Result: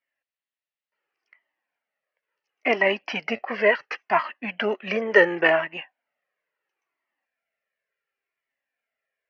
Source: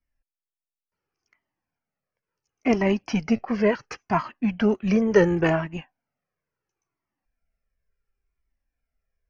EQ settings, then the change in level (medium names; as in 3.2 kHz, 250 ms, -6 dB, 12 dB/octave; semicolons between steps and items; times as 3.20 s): cabinet simulation 480–4400 Hz, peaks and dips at 590 Hz +5 dB, 1.9 kHz +9 dB, 2.8 kHz +6 dB; +2.0 dB